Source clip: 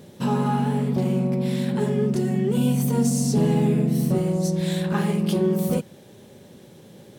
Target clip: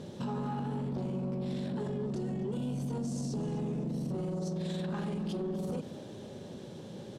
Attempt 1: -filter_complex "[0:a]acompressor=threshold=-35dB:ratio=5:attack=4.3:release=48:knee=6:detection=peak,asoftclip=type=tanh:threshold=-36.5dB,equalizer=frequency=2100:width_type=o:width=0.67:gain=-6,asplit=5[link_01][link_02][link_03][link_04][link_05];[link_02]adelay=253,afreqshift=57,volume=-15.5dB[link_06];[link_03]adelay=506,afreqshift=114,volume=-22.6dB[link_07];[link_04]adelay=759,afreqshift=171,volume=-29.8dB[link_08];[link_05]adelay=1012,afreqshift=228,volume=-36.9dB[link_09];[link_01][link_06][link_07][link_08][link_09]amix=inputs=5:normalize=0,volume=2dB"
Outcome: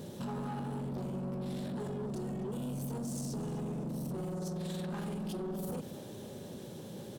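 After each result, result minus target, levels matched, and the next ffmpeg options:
8,000 Hz band +5.5 dB; soft clipping: distortion +8 dB
-filter_complex "[0:a]acompressor=threshold=-35dB:ratio=5:attack=4.3:release=48:knee=6:detection=peak,asoftclip=type=tanh:threshold=-36.5dB,lowpass=6200,equalizer=frequency=2100:width_type=o:width=0.67:gain=-6,asplit=5[link_01][link_02][link_03][link_04][link_05];[link_02]adelay=253,afreqshift=57,volume=-15.5dB[link_06];[link_03]adelay=506,afreqshift=114,volume=-22.6dB[link_07];[link_04]adelay=759,afreqshift=171,volume=-29.8dB[link_08];[link_05]adelay=1012,afreqshift=228,volume=-36.9dB[link_09];[link_01][link_06][link_07][link_08][link_09]amix=inputs=5:normalize=0,volume=2dB"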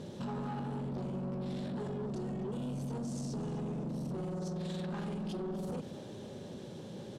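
soft clipping: distortion +8 dB
-filter_complex "[0:a]acompressor=threshold=-35dB:ratio=5:attack=4.3:release=48:knee=6:detection=peak,asoftclip=type=tanh:threshold=-30dB,lowpass=6200,equalizer=frequency=2100:width_type=o:width=0.67:gain=-6,asplit=5[link_01][link_02][link_03][link_04][link_05];[link_02]adelay=253,afreqshift=57,volume=-15.5dB[link_06];[link_03]adelay=506,afreqshift=114,volume=-22.6dB[link_07];[link_04]adelay=759,afreqshift=171,volume=-29.8dB[link_08];[link_05]adelay=1012,afreqshift=228,volume=-36.9dB[link_09];[link_01][link_06][link_07][link_08][link_09]amix=inputs=5:normalize=0,volume=2dB"

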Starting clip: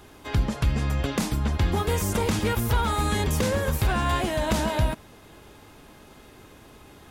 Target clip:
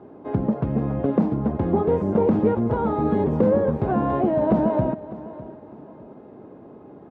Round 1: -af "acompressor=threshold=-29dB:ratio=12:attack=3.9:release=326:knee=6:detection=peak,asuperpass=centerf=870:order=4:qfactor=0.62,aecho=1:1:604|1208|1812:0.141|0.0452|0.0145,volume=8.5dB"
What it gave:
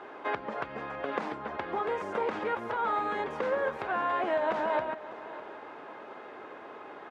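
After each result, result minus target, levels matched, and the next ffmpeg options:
downward compressor: peak gain reduction +12.5 dB; 250 Hz band −10.0 dB
-af "asuperpass=centerf=870:order=4:qfactor=0.62,aecho=1:1:604|1208|1812:0.141|0.0452|0.0145,volume=8.5dB"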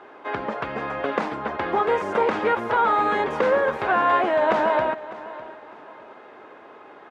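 250 Hz band −10.5 dB
-af "asuperpass=centerf=340:order=4:qfactor=0.62,aecho=1:1:604|1208|1812:0.141|0.0452|0.0145,volume=8.5dB"

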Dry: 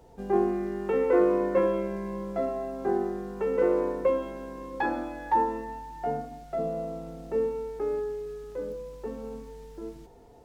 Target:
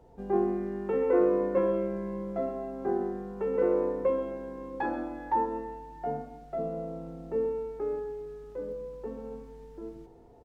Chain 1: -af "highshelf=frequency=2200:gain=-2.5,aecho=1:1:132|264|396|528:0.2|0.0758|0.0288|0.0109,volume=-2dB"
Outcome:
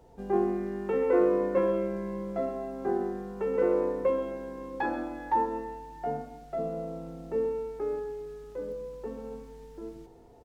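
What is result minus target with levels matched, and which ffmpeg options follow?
4,000 Hz band +5.0 dB
-af "highshelf=frequency=2200:gain=-10,aecho=1:1:132|264|396|528:0.2|0.0758|0.0288|0.0109,volume=-2dB"

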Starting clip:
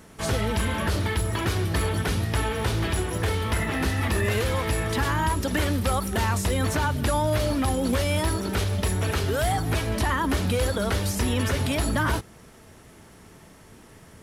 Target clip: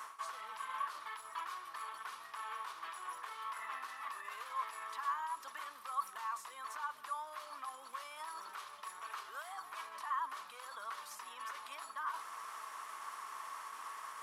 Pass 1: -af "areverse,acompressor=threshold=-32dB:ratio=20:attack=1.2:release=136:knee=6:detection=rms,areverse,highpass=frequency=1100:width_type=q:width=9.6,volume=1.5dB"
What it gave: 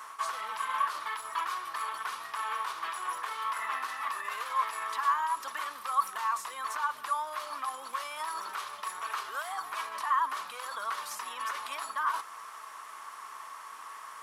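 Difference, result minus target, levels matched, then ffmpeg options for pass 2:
downward compressor: peak gain reduction −10 dB
-af "areverse,acompressor=threshold=-42.5dB:ratio=20:attack=1.2:release=136:knee=6:detection=rms,areverse,highpass=frequency=1100:width_type=q:width=9.6,volume=1.5dB"

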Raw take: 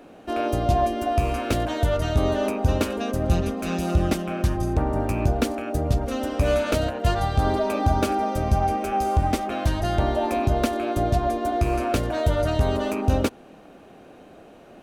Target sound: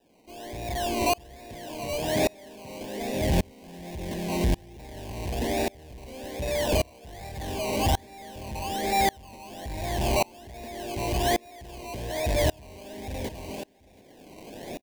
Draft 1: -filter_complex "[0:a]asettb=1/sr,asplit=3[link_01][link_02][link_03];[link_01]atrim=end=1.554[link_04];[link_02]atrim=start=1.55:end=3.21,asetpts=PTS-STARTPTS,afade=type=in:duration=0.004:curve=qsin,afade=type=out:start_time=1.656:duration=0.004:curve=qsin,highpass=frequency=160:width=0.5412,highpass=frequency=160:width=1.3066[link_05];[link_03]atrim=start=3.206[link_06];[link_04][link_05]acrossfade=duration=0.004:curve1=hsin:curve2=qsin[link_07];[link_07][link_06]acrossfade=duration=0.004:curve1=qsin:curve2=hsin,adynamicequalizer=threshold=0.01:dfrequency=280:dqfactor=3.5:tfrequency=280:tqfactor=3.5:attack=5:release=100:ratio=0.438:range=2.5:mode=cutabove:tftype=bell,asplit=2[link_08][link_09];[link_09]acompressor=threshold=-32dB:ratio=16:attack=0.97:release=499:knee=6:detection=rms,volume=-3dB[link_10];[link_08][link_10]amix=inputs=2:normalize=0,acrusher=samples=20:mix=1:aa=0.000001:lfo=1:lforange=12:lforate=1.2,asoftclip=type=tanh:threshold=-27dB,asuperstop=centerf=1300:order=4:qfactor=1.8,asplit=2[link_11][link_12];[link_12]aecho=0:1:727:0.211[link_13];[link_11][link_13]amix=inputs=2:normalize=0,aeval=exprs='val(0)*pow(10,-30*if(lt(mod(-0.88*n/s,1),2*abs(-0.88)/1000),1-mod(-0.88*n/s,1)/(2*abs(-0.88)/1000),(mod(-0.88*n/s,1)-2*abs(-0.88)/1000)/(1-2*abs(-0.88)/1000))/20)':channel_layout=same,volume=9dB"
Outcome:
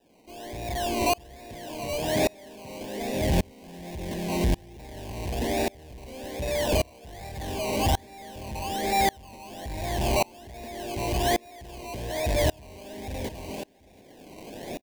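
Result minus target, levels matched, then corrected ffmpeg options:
downward compressor: peak gain reduction −11 dB
-filter_complex "[0:a]asettb=1/sr,asplit=3[link_01][link_02][link_03];[link_01]atrim=end=1.554[link_04];[link_02]atrim=start=1.55:end=3.21,asetpts=PTS-STARTPTS,afade=type=in:duration=0.004:curve=qsin,afade=type=out:start_time=1.656:duration=0.004:curve=qsin,highpass=frequency=160:width=0.5412,highpass=frequency=160:width=1.3066[link_05];[link_03]atrim=start=3.206[link_06];[link_04][link_05]acrossfade=duration=0.004:curve1=hsin:curve2=qsin[link_07];[link_07][link_06]acrossfade=duration=0.004:curve1=qsin:curve2=hsin,adynamicequalizer=threshold=0.01:dfrequency=280:dqfactor=3.5:tfrequency=280:tqfactor=3.5:attack=5:release=100:ratio=0.438:range=2.5:mode=cutabove:tftype=bell,asplit=2[link_08][link_09];[link_09]acompressor=threshold=-43.5dB:ratio=16:attack=0.97:release=499:knee=6:detection=rms,volume=-3dB[link_10];[link_08][link_10]amix=inputs=2:normalize=0,acrusher=samples=20:mix=1:aa=0.000001:lfo=1:lforange=12:lforate=1.2,asoftclip=type=tanh:threshold=-27dB,asuperstop=centerf=1300:order=4:qfactor=1.8,asplit=2[link_11][link_12];[link_12]aecho=0:1:727:0.211[link_13];[link_11][link_13]amix=inputs=2:normalize=0,aeval=exprs='val(0)*pow(10,-30*if(lt(mod(-0.88*n/s,1),2*abs(-0.88)/1000),1-mod(-0.88*n/s,1)/(2*abs(-0.88)/1000),(mod(-0.88*n/s,1)-2*abs(-0.88)/1000)/(1-2*abs(-0.88)/1000))/20)':channel_layout=same,volume=9dB"

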